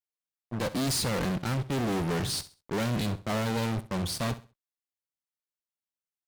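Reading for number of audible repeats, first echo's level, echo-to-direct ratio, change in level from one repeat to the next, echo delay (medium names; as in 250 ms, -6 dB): 2, -15.5 dB, -15.0 dB, -11.5 dB, 66 ms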